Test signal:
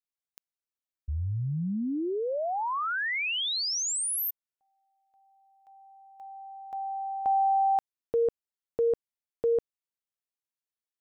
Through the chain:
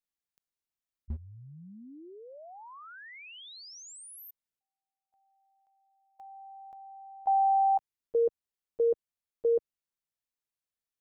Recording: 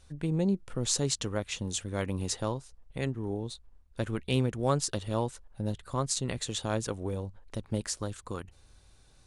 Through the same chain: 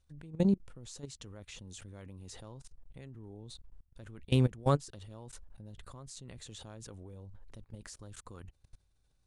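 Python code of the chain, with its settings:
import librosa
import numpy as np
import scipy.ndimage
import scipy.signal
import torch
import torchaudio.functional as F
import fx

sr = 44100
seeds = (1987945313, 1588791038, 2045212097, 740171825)

y = fx.low_shelf(x, sr, hz=180.0, db=7.0)
y = fx.level_steps(y, sr, step_db=24)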